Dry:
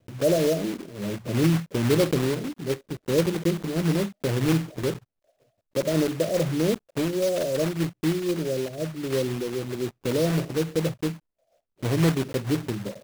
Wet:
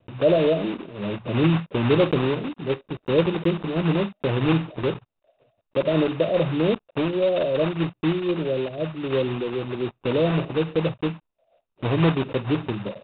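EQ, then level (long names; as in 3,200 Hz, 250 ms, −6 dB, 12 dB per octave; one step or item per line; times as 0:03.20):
Chebyshev low-pass with heavy ripple 3,800 Hz, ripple 6 dB
+7.0 dB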